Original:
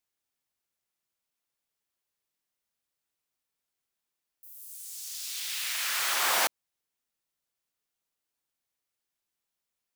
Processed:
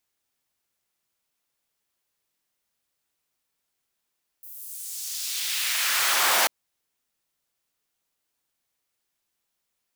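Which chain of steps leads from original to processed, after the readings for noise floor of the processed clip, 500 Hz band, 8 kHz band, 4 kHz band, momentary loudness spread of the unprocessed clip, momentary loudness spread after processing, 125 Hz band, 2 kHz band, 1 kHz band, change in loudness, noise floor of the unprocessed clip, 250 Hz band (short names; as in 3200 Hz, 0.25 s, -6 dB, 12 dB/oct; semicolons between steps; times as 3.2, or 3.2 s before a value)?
-80 dBFS, +4.5 dB, +5.5 dB, +5.5 dB, 17 LU, 17 LU, n/a, +5.5 dB, +4.5 dB, +5.5 dB, under -85 dBFS, +4.5 dB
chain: core saturation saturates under 3900 Hz; gain +6.5 dB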